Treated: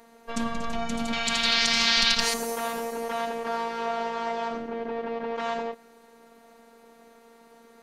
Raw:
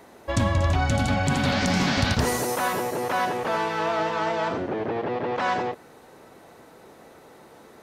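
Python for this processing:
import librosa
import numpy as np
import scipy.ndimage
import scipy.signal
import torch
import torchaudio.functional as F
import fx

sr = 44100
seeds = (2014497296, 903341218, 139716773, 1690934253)

y = fx.curve_eq(x, sr, hz=(110.0, 230.0, 4100.0, 13000.0), db=(0, -11, 15, 0), at=(1.13, 2.34))
y = fx.robotise(y, sr, hz=231.0)
y = y * 10.0 ** (-2.5 / 20.0)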